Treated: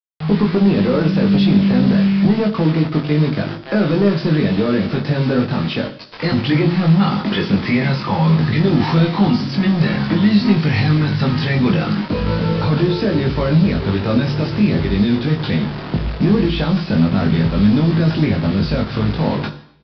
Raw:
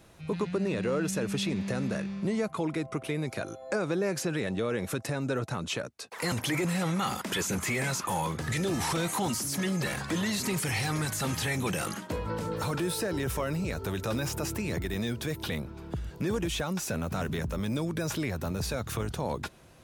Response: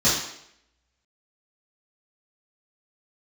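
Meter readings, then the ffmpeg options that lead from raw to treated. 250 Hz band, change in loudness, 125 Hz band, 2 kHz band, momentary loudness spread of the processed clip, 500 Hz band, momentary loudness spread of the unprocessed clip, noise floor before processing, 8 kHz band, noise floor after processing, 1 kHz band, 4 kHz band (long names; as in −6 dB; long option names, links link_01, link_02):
+18.0 dB, +15.0 dB, +17.5 dB, +9.0 dB, 6 LU, +11.5 dB, 5 LU, −47 dBFS, below −15 dB, −30 dBFS, +10.0 dB, +10.0 dB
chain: -filter_complex "[0:a]equalizer=frequency=190:width=0.77:gain=10,acrusher=bits=5:mix=0:aa=0.000001,volume=18.5dB,asoftclip=hard,volume=-18.5dB,asplit=2[link_01][link_02];[link_02]adelay=20,volume=-3dB[link_03];[link_01][link_03]amix=inputs=2:normalize=0,aresample=11025,aresample=44100,asplit=2[link_04][link_05];[1:a]atrim=start_sample=2205,adelay=20[link_06];[link_05][link_06]afir=irnorm=-1:irlink=0,volume=-26.5dB[link_07];[link_04][link_07]amix=inputs=2:normalize=0,volume=6.5dB"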